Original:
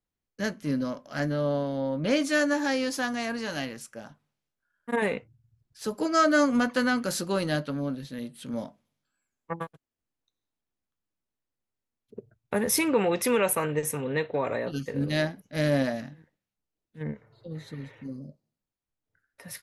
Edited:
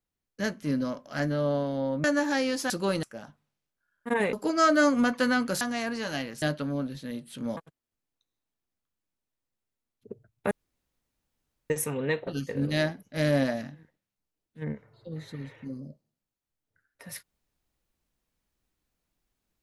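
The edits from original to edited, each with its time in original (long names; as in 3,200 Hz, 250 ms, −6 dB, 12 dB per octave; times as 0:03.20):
0:02.04–0:02.38: remove
0:03.04–0:03.85: swap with 0:07.17–0:07.50
0:05.15–0:05.89: remove
0:08.65–0:09.64: remove
0:12.58–0:13.77: fill with room tone
0:14.34–0:14.66: remove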